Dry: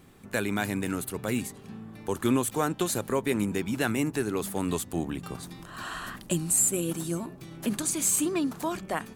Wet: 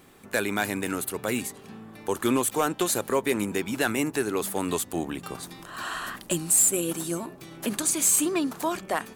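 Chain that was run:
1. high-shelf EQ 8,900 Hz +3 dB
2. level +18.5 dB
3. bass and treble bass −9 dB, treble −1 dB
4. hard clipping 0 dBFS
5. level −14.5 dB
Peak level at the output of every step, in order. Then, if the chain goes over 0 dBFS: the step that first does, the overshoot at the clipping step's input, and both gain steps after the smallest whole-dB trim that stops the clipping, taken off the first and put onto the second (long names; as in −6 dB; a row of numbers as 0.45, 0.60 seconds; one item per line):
−12.0, +6.5, +6.0, 0.0, −14.5 dBFS
step 2, 6.0 dB
step 2 +12.5 dB, step 5 −8.5 dB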